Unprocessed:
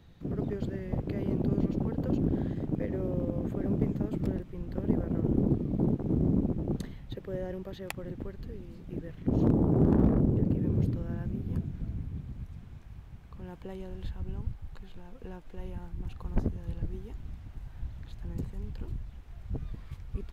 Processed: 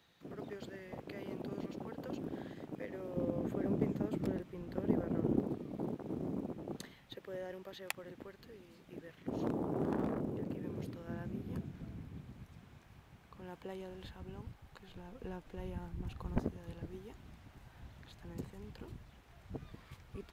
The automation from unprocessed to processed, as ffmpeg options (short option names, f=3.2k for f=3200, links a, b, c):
-af "asetnsamples=n=441:p=0,asendcmd='3.16 highpass f 330;5.4 highpass f 950;11.07 highpass f 380;14.88 highpass f 93;16.38 highpass f 360',highpass=f=1.2k:p=1"